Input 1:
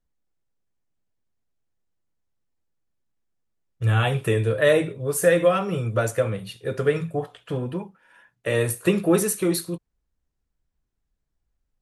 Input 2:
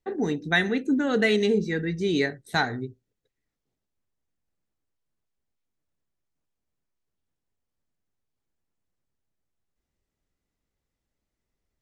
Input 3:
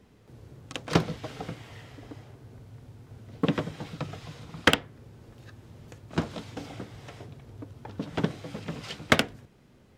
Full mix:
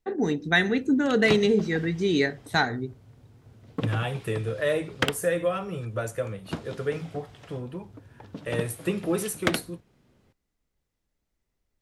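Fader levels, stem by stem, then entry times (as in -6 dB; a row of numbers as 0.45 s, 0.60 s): -7.5 dB, +1.0 dB, -5.0 dB; 0.00 s, 0.00 s, 0.35 s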